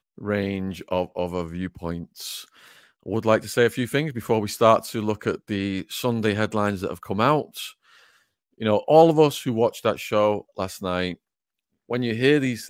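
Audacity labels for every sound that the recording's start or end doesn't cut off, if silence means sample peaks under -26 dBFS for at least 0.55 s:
3.080000	7.660000	sound
8.620000	11.130000	sound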